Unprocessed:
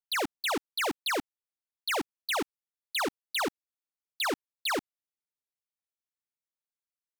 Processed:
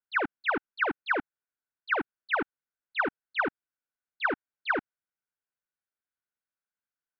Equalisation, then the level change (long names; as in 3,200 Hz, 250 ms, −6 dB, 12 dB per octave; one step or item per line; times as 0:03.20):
low-pass filter 2,400 Hz 24 dB per octave
parametric band 1,500 Hz +12 dB 0.24 octaves
0.0 dB